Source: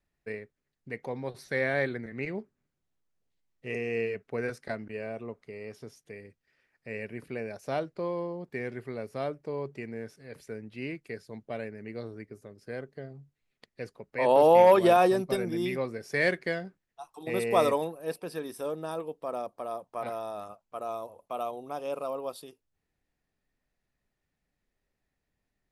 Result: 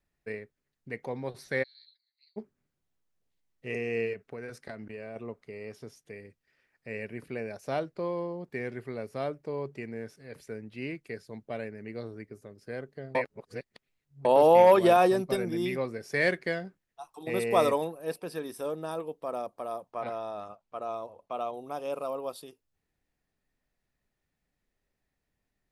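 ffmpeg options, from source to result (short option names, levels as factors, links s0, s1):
-filter_complex "[0:a]asplit=3[s0][s1][s2];[s0]afade=t=out:st=1.62:d=0.02[s3];[s1]asuperpass=centerf=4300:order=4:qfactor=7.5,afade=t=in:st=1.62:d=0.02,afade=t=out:st=2.36:d=0.02[s4];[s2]afade=t=in:st=2.36:d=0.02[s5];[s3][s4][s5]amix=inputs=3:normalize=0,asettb=1/sr,asplit=3[s6][s7][s8];[s6]atrim=end=4.134[s9];[s7]atrim=start=4.13:end=5.16,asetpts=PTS-STARTPTS,afade=t=in:d=0.004:c=qsin,afade=t=out:st=1.026:d=0.004:c=qsin,acompressor=threshold=0.0141:ratio=4:attack=3.2:release=140:knee=1:detection=peak[s10];[s8]atrim=start=5.156[s11];[s9][s10]acrossfade=d=0.004:c1=hsin:c2=qsin[s12];[s12][s11]acrossfade=d=0.004:c1=qsin:c2=hsin,asettb=1/sr,asplit=3[s13][s14][s15];[s13]atrim=end=19.914[s16];[s14]atrim=start=19.91:end=21.54,asetpts=PTS-STARTPTS,afade=t=in:d=0.004:c=qsin,afade=t=out:st=1.626:d=0.004:c=qsin,lowpass=5500[s17];[s15]atrim=start=21.536[s18];[s16][s17]acrossfade=d=0.004:c1=hsin:c2=qsin[s19];[s19][s18]acrossfade=d=0.004:c1=qsin:c2=hsin,asplit=3[s20][s21][s22];[s20]atrim=end=13.152[s23];[s21]atrim=start=13.148:end=14.252,asetpts=PTS-STARTPTS,areverse[s24];[s22]atrim=start=14.248[s25];[s23][s24]acrossfade=d=0.004:c1=hsin:c2=hsin[s26];[s26][s25]acrossfade=d=0.004:c1=hsin:c2=hsin"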